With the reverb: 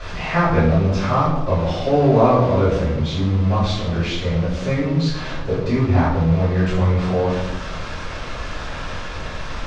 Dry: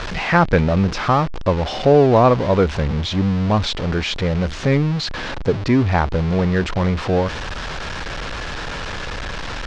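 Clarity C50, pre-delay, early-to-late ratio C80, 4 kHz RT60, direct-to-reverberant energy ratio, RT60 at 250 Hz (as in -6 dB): 2.0 dB, 3 ms, 5.0 dB, 0.60 s, -10.5 dB, 1.3 s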